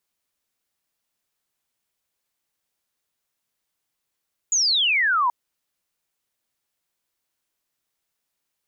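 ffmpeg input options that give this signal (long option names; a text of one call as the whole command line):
ffmpeg -f lavfi -i "aevalsrc='0.141*clip(t/0.002,0,1)*clip((0.78-t)/0.002,0,1)*sin(2*PI*7000*0.78/log(930/7000)*(exp(log(930/7000)*t/0.78)-1))':duration=0.78:sample_rate=44100" out.wav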